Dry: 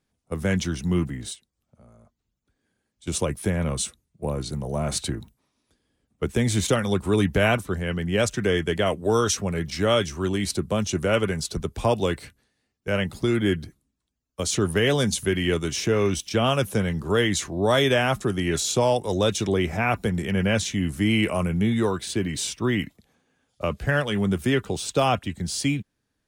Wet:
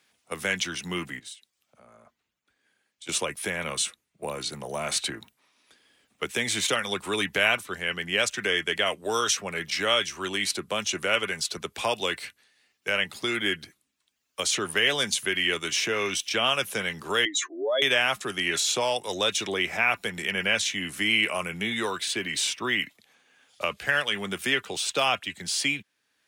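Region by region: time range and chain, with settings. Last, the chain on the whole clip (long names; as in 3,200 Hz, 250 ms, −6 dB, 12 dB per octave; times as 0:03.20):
0:01.19–0:03.09: downward compressor 3 to 1, threshold −55 dBFS + multiband upward and downward expander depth 40%
0:17.25–0:17.82: expanding power law on the bin magnitudes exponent 2.3 + Butterworth high-pass 250 Hz 96 dB per octave
whole clip: high-pass filter 970 Hz 6 dB per octave; parametric band 2,500 Hz +6.5 dB 1.5 octaves; multiband upward and downward compressor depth 40%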